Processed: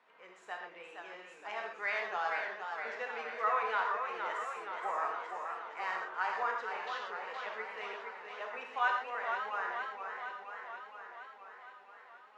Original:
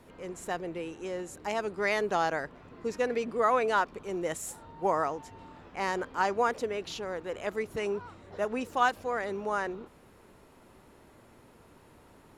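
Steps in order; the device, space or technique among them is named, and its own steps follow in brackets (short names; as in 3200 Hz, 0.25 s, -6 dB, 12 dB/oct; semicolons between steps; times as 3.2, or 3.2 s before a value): 7.93–9.15 steep high-pass 220 Hz 72 dB/oct; HPF 1300 Hz 12 dB/oct; phone in a pocket (LPF 3300 Hz 12 dB/oct; bell 170 Hz +3 dB 0.77 oct; high shelf 2100 Hz -8.5 dB); non-linear reverb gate 0.15 s flat, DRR 1 dB; warbling echo 0.47 s, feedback 67%, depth 114 cents, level -6 dB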